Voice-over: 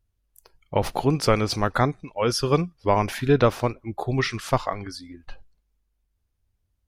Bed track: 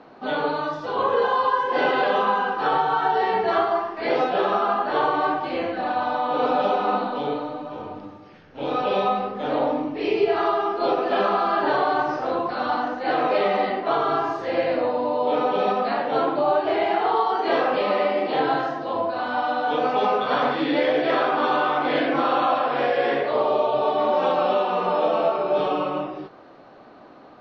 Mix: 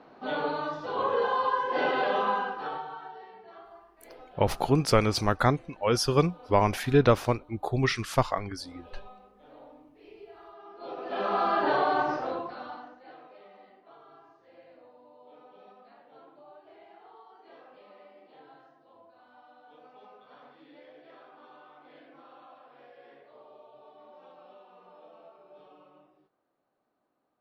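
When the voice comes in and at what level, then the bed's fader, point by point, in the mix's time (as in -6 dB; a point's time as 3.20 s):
3.65 s, -2.0 dB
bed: 2.36 s -6 dB
3.35 s -28.5 dB
10.52 s -28.5 dB
11.41 s -4 dB
12.14 s -4 dB
13.33 s -32 dB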